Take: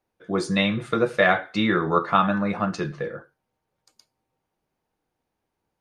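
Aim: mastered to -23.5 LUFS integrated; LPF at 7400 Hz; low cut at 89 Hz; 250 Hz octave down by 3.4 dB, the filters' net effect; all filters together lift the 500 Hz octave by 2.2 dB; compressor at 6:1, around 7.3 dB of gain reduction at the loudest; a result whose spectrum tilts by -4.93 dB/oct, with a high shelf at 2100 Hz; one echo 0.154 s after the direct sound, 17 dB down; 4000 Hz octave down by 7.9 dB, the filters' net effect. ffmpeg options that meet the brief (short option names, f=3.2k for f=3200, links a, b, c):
-af "highpass=89,lowpass=7.4k,equalizer=f=250:t=o:g=-6,equalizer=f=500:t=o:g=4.5,highshelf=f=2.1k:g=-4,equalizer=f=4k:t=o:g=-5.5,acompressor=threshold=-21dB:ratio=6,aecho=1:1:154:0.141,volume=4.5dB"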